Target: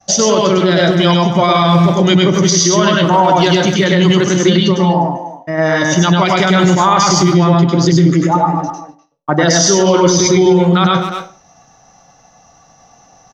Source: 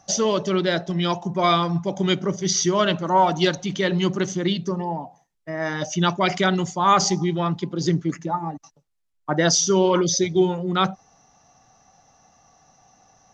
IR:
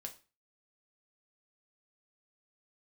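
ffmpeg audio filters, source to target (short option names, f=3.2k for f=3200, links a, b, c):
-filter_complex "[0:a]agate=range=-33dB:threshold=-52dB:ratio=3:detection=peak,asplit=2[a][b];[b]adelay=250,highpass=300,lowpass=3.4k,asoftclip=type=hard:threshold=-15dB,volume=-11dB[c];[a][c]amix=inputs=2:normalize=0,asplit=2[d][e];[1:a]atrim=start_sample=2205,adelay=101[f];[e][f]afir=irnorm=-1:irlink=0,volume=4dB[g];[d][g]amix=inputs=2:normalize=0,alimiter=level_in=11.5dB:limit=-1dB:release=50:level=0:latency=1,volume=-1dB"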